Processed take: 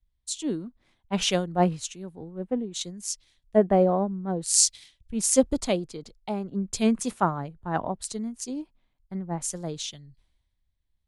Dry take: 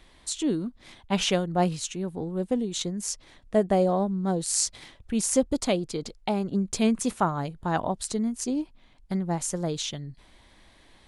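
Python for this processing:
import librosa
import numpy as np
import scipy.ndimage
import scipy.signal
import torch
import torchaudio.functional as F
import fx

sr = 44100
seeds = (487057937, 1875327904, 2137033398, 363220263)

y = fx.band_widen(x, sr, depth_pct=100)
y = y * librosa.db_to_amplitude(-2.5)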